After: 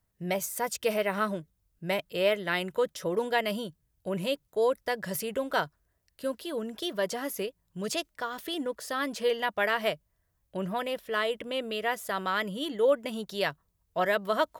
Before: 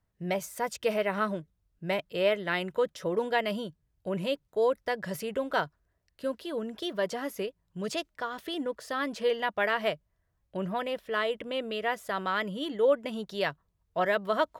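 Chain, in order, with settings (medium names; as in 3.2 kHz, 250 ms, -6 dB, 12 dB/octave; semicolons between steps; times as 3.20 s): treble shelf 6.7 kHz +11.5 dB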